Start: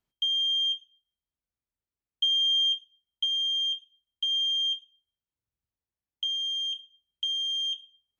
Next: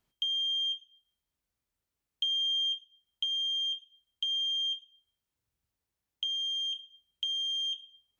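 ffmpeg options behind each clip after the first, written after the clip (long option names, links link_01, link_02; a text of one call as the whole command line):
ffmpeg -i in.wav -af "acompressor=threshold=-45dB:ratio=2,volume=6dB" out.wav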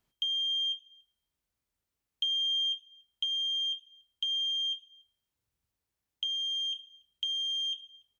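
ffmpeg -i in.wav -filter_complex "[0:a]asplit=2[link_01][link_02];[link_02]adelay=285.7,volume=-26dB,highshelf=frequency=4000:gain=-6.43[link_03];[link_01][link_03]amix=inputs=2:normalize=0" out.wav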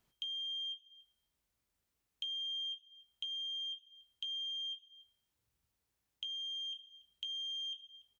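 ffmpeg -i in.wav -filter_complex "[0:a]acompressor=threshold=-52dB:ratio=2,asplit=2[link_01][link_02];[link_02]adelay=17,volume=-12.5dB[link_03];[link_01][link_03]amix=inputs=2:normalize=0,volume=1.5dB" out.wav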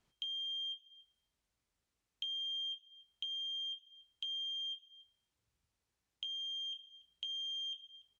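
ffmpeg -i in.wav -af "lowpass=8500" out.wav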